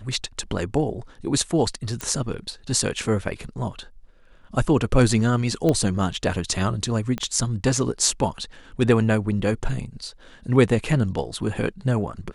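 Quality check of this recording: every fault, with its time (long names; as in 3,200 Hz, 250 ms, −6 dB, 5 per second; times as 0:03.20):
0:02.01: click
0:05.69: click −10 dBFS
0:07.18: click −15 dBFS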